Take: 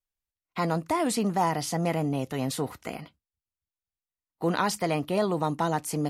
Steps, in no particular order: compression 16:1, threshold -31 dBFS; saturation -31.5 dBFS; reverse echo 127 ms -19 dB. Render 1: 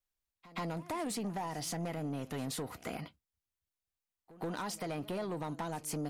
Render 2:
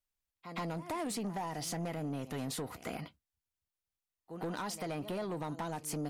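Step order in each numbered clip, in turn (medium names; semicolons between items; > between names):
compression > saturation > reverse echo; reverse echo > compression > saturation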